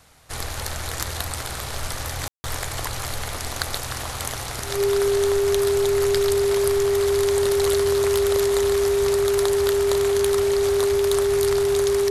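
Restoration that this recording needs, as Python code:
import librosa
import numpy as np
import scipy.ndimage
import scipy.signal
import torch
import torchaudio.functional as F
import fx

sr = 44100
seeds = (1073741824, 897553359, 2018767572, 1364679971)

y = fx.fix_declip(x, sr, threshold_db=-7.5)
y = fx.notch(y, sr, hz=400.0, q=30.0)
y = fx.fix_ambience(y, sr, seeds[0], print_start_s=0.0, print_end_s=0.5, start_s=2.28, end_s=2.44)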